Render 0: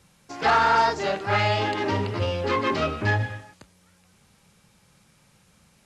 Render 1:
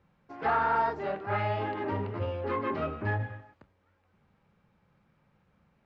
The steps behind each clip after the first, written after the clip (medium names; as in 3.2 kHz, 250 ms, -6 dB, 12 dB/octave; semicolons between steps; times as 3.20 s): low-pass 1.7 kHz 12 dB/octave; hum notches 60/120/180 Hz; trim -6.5 dB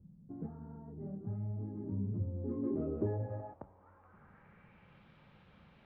compression 8:1, threshold -39 dBFS, peak gain reduction 15.5 dB; low-pass sweep 190 Hz -> 3.5 kHz, 2.23–5.09 s; trim +6 dB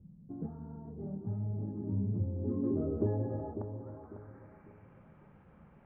Gaussian low-pass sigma 4.6 samples; on a send: feedback echo behind a low-pass 548 ms, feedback 34%, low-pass 930 Hz, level -8.5 dB; on the sum: trim +3 dB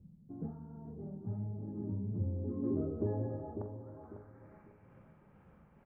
tremolo 2.2 Hz, depth 32%; doubling 44 ms -11.5 dB; trim -1.5 dB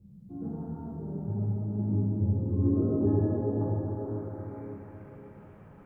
plate-style reverb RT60 4.1 s, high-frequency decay 0.95×, DRR -8 dB